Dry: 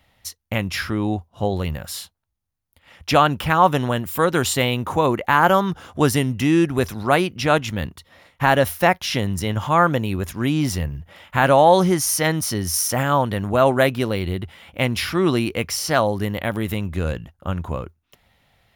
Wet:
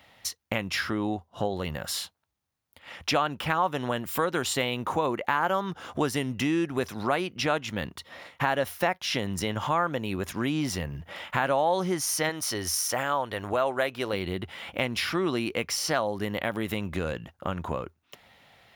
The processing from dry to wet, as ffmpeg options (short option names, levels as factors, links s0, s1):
-filter_complex "[0:a]asettb=1/sr,asplit=3[s0][s1][s2];[s0]atrim=end=0.774[s3];[s1]atrim=start=0.77:end=1.94,asetpts=PTS-STARTPTS,afade=t=in:d=0.004:c=qsin,afade=t=out:st=1.166:d=0.004:c=qsin,bandreject=f=2400:w=12[s4];[s2]atrim=start=1.936[s5];[s3][s4]acrossfade=d=0.004:c1=hsin:c2=qsin[s6];[s6][s5]acrossfade=d=0.004:c1=qsin:c2=hsin,asettb=1/sr,asplit=3[s7][s8][s9];[s7]atrim=end=12.294[s10];[s8]atrim=start=12.29:end=14.13,asetpts=PTS-STARTPTS,afade=t=in:d=0.004:c=qsin,afade=t=out:st=1.836:d=0.004:c=qsin,equalizer=f=180:t=o:w=1.3:g=-10.5[s11];[s9]atrim=start=14.126[s12];[s10][s11]acrossfade=d=0.004:c1=hsin:c2=qsin[s13];[s13][s12]acrossfade=d=0.004:c1=qsin:c2=hsin,highpass=f=270:p=1,equalizer=f=13000:t=o:w=1.2:g=-6.5,acompressor=threshold=0.0158:ratio=2.5,volume=2"